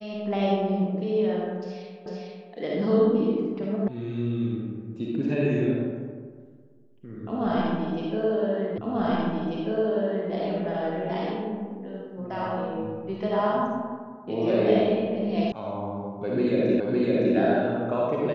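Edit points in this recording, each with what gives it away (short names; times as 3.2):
2.06 repeat of the last 0.45 s
3.88 sound cut off
8.78 repeat of the last 1.54 s
15.52 sound cut off
16.8 repeat of the last 0.56 s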